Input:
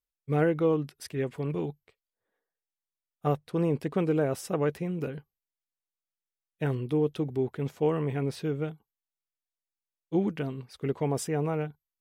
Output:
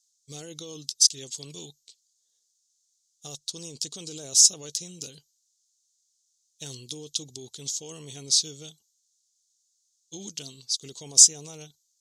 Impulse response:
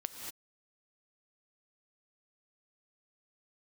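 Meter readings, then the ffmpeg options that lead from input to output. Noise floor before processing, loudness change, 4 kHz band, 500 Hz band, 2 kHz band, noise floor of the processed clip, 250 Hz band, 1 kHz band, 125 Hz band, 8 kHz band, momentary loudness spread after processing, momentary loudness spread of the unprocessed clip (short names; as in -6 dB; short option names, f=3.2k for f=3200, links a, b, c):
under -85 dBFS, +8.0 dB, +22.5 dB, -16.5 dB, under -10 dB, -73 dBFS, -15.5 dB, under -15 dB, -15.0 dB, +26.5 dB, 24 LU, 9 LU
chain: -af "lowpass=f=6.6k:t=q:w=4.5,alimiter=limit=-22dB:level=0:latency=1:release=18,aexciter=amount=8.7:drive=3:freq=3.4k,highshelf=f=2.5k:t=q:w=1.5:g=13.5,volume=-13.5dB"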